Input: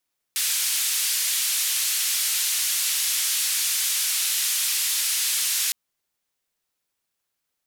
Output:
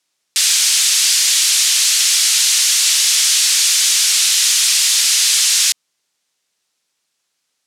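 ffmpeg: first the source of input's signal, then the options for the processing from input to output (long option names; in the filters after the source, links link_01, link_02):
-f lavfi -i "anoisesrc=color=white:duration=5.36:sample_rate=44100:seed=1,highpass=frequency=2500,lowpass=frequency=13000,volume=-15.8dB"
-af "acontrast=76,highpass=140,lowpass=6400,highshelf=frequency=3800:gain=12"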